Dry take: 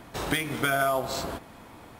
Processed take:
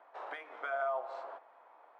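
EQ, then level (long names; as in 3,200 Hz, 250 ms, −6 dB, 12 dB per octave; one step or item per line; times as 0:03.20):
high-pass filter 620 Hz 24 dB per octave
low-pass filter 1,100 Hz 12 dB per octave
−5.5 dB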